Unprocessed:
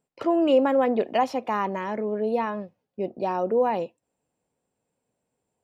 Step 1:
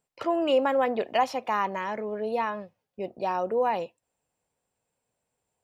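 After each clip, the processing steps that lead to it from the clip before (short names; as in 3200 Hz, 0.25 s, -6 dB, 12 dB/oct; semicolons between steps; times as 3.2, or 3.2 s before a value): bell 260 Hz -9.5 dB 2.2 oct; gain +2 dB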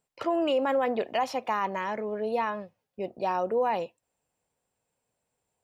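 limiter -18 dBFS, peak gain reduction 5 dB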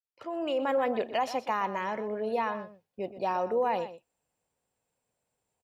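opening faded in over 0.74 s; outdoor echo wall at 21 m, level -13 dB; gain -1.5 dB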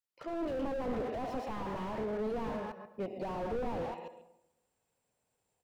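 reverse delay 0.136 s, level -10.5 dB; on a send at -12 dB: reverb RT60 0.80 s, pre-delay 60 ms; on the sum: slew limiter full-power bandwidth 10 Hz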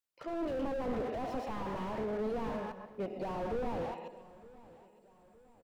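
feedback echo 0.912 s, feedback 46%, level -20 dB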